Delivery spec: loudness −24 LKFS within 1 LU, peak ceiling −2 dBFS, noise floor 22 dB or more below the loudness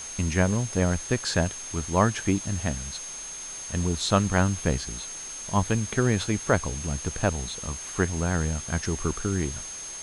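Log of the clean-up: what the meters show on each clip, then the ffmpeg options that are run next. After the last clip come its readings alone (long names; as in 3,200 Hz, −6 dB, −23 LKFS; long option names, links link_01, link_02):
interfering tone 6,400 Hz; level of the tone −36 dBFS; background noise floor −38 dBFS; target noise floor −49 dBFS; integrated loudness −27.0 LKFS; sample peak −6.5 dBFS; target loudness −24.0 LKFS
→ -af "bandreject=frequency=6400:width=30"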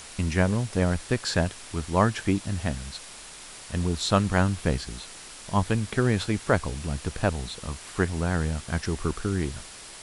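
interfering tone none found; background noise floor −44 dBFS; target noise floor −49 dBFS
→ -af "afftdn=noise_reduction=6:noise_floor=-44"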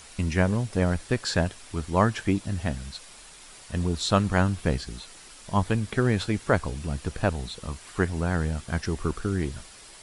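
background noise floor −48 dBFS; target noise floor −49 dBFS
→ -af "afftdn=noise_reduction=6:noise_floor=-48"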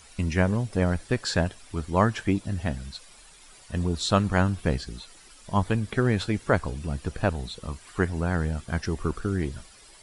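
background noise floor −52 dBFS; integrated loudness −27.5 LKFS; sample peak −6.5 dBFS; target loudness −24.0 LKFS
→ -af "volume=3.5dB"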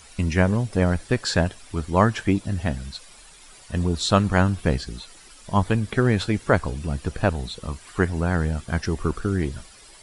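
integrated loudness −24.0 LKFS; sample peak −3.0 dBFS; background noise floor −48 dBFS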